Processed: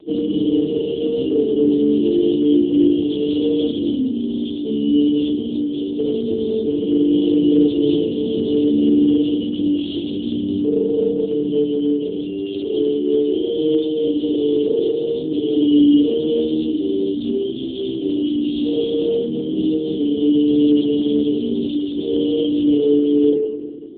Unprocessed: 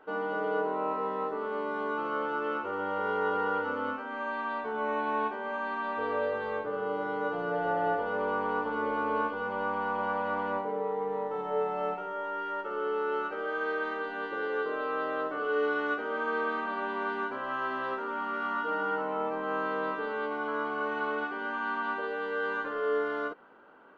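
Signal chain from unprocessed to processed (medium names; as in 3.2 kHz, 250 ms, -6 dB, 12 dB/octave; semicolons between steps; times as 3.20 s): drifting ripple filter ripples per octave 1.2, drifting -0.46 Hz, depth 9 dB; peaking EQ 2.8 kHz +3 dB 2.2 oct; in parallel at +1.5 dB: peak limiter -25.5 dBFS, peak gain reduction 10 dB; on the sum: vibrato 0.99 Hz 13 cents; simulated room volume 700 m³, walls mixed, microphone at 1.9 m; overload inside the chain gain 18 dB; dynamic bell 1.8 kHz, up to +4 dB, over -39 dBFS, Q 1.2; brick-wall FIR band-stop 450–2800 Hz; small resonant body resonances 340/480/1000/2700 Hz, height 14 dB, ringing for 65 ms; trim +7.5 dB; AMR-NB 5.9 kbps 8 kHz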